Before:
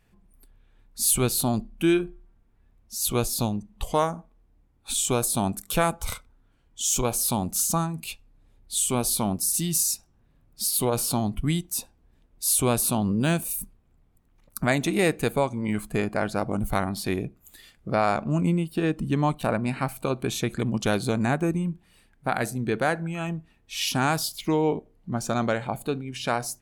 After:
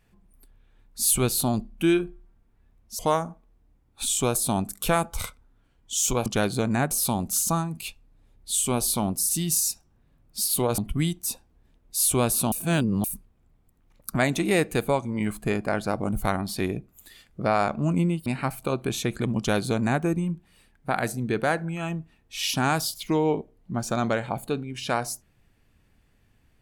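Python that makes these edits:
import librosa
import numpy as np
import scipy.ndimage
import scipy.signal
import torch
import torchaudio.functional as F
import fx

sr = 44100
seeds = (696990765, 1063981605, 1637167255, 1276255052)

y = fx.edit(x, sr, fx.cut(start_s=2.99, length_s=0.88),
    fx.cut(start_s=11.01, length_s=0.25),
    fx.reverse_span(start_s=13.0, length_s=0.52),
    fx.cut(start_s=18.74, length_s=0.9),
    fx.duplicate(start_s=20.76, length_s=0.65, to_s=7.14), tone=tone)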